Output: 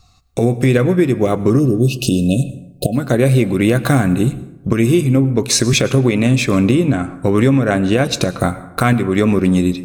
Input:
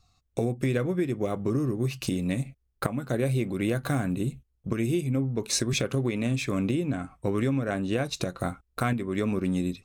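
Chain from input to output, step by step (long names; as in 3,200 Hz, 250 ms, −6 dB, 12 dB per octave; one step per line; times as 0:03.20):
time-frequency box erased 0:01.60–0:02.95, 740–2,500 Hz
dense smooth reverb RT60 0.94 s, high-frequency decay 0.5×, pre-delay 90 ms, DRR 15.5 dB
boost into a limiter +14.5 dB
level −1 dB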